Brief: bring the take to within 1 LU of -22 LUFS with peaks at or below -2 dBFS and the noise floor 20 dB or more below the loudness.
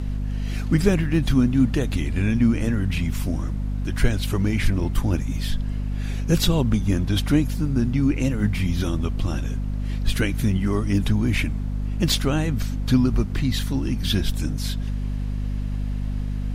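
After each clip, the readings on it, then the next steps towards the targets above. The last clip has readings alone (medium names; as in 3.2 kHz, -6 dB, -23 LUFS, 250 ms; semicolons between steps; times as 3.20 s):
hum 50 Hz; highest harmonic 250 Hz; hum level -23 dBFS; noise floor -27 dBFS; noise floor target -44 dBFS; loudness -23.5 LUFS; peak level -4.5 dBFS; loudness target -22.0 LUFS
-> de-hum 50 Hz, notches 5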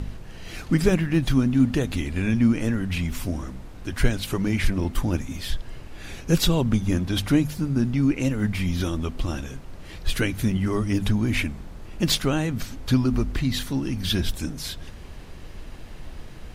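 hum not found; noise floor -40 dBFS; noise floor target -45 dBFS
-> noise print and reduce 6 dB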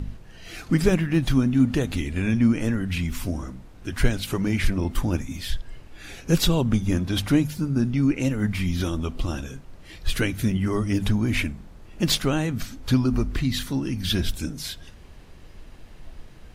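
noise floor -46 dBFS; loudness -24.5 LUFS; peak level -6.0 dBFS; loudness target -22.0 LUFS
-> trim +2.5 dB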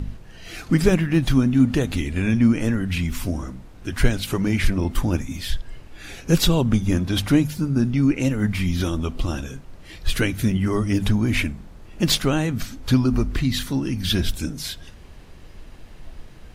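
loudness -22.0 LUFS; peak level -3.5 dBFS; noise floor -43 dBFS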